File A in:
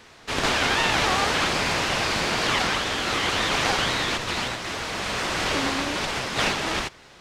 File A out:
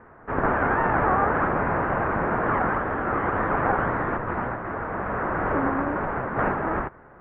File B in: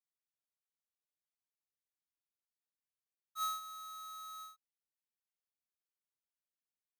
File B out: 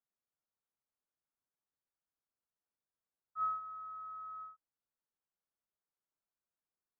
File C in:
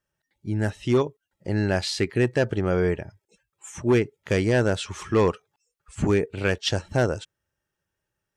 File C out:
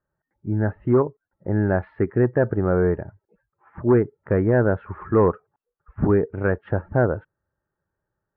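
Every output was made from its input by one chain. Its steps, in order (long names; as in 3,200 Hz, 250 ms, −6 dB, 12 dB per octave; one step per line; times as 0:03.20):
Butterworth low-pass 1,600 Hz 36 dB per octave
level +3 dB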